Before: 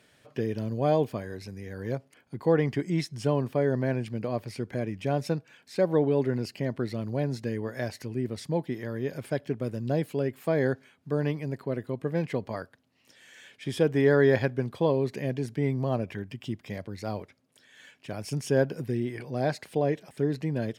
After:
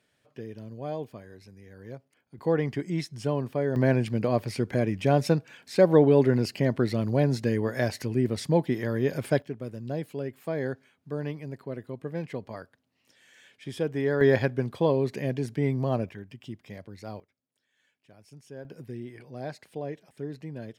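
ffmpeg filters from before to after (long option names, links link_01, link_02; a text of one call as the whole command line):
ffmpeg -i in.wav -af "asetnsamples=nb_out_samples=441:pad=0,asendcmd='2.38 volume volume -2dB;3.76 volume volume 5.5dB;9.42 volume volume -5dB;14.21 volume volume 1dB;16.09 volume volume -6dB;17.2 volume volume -19dB;18.65 volume volume -9dB',volume=-10dB" out.wav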